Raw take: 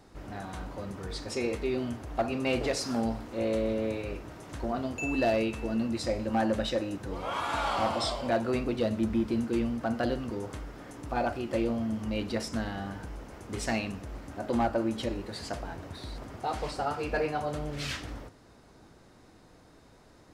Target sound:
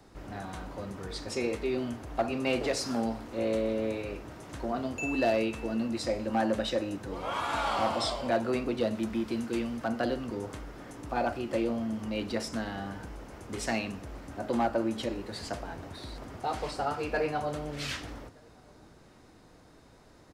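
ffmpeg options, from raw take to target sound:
-filter_complex "[0:a]asettb=1/sr,asplit=3[a][b][c];[a]atrim=end=8.954[d];[b]atrim=start=8.95:end=9.88,asetpts=PTS-STARTPTS,afade=t=in:d=0.004:c=qsin,afade=t=out:st=0.926:d=0.004:c=qsin,tiltshelf=f=970:g=-3[e];[c]atrim=start=9.876[f];[d][e]acrossfade=d=0.004:c1=hsin:c2=qsin[g];[g][f]acrossfade=d=0.004:c1=qsin:c2=hsin,acrossover=split=180|480|2200[h][i][j][k];[h]alimiter=level_in=14.5dB:limit=-24dB:level=0:latency=1:release=167,volume=-14.5dB[l];[l][i][j][k]amix=inputs=4:normalize=0,asplit=2[m][n];[n]adelay=1224,volume=-29dB,highshelf=f=4k:g=-27.6[o];[m][o]amix=inputs=2:normalize=0"

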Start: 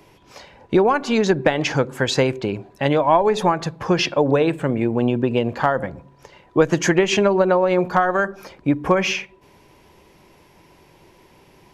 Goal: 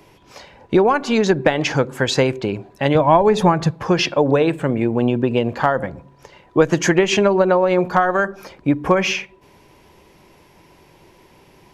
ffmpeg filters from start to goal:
-filter_complex "[0:a]asettb=1/sr,asplit=3[a][b][c];[a]atrim=end=2.954[d];[b]atrim=start=2.95:end=3.71,asetpts=PTS-STARTPTS,afade=t=in:d=0.004:c=qsin,afade=t=out:st=0.756:d=0.004:c=qsin,equalizer=f=73:w=0.56:g=14.5[e];[c]atrim=start=3.706[f];[d][e]acrossfade=d=0.004:c1=hsin:c2=qsin[g];[g][f]acrossfade=d=0.004:c1=qsin:c2=hsin,volume=1.5dB"

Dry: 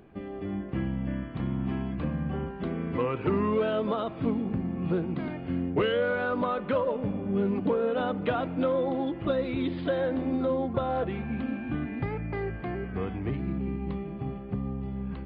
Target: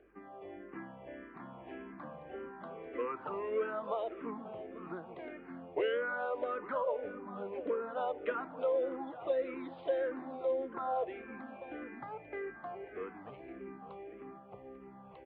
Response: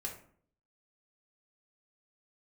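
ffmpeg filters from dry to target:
-filter_complex "[0:a]acrossover=split=360 3200:gain=0.0708 1 0.2[a][b][c];[a][b][c]amix=inputs=3:normalize=0,aeval=exprs='val(0)+0.000794*(sin(2*PI*50*n/s)+sin(2*PI*2*50*n/s)/2+sin(2*PI*3*50*n/s)/3+sin(2*PI*4*50*n/s)/4+sin(2*PI*5*50*n/s)/5)':c=same,highpass=f=130:p=1,highshelf=f=3k:g=-9.5,asplit=2[d][e];[e]aecho=0:1:844:0.188[f];[d][f]amix=inputs=2:normalize=0,asplit=2[g][h];[h]afreqshift=-1.7[i];[g][i]amix=inputs=2:normalize=1,volume=-1.5dB"

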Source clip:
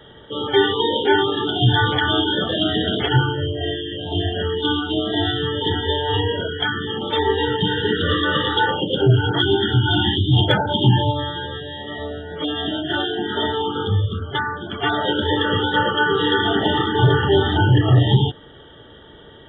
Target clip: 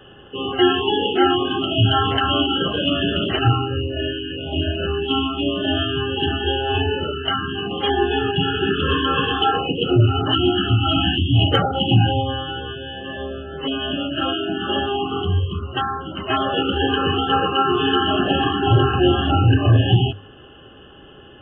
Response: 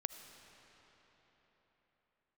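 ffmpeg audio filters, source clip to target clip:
-af "asetrate=40131,aresample=44100,bandreject=f=50:t=h:w=6,bandreject=f=100:t=h:w=6"

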